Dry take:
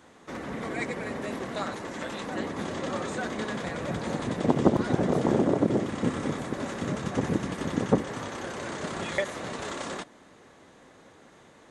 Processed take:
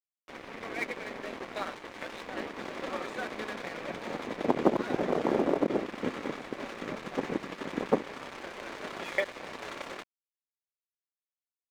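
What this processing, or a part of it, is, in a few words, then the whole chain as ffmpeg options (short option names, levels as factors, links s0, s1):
pocket radio on a weak battery: -af "highpass=290,lowpass=3900,aeval=exprs='sgn(val(0))*max(abs(val(0))-0.01,0)':c=same,equalizer=f=2300:t=o:w=0.25:g=5"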